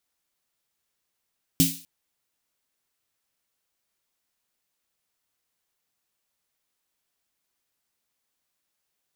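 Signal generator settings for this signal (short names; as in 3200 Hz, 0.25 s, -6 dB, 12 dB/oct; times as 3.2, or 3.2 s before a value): snare drum length 0.25 s, tones 170 Hz, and 270 Hz, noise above 2700 Hz, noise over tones -2 dB, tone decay 0.29 s, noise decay 0.43 s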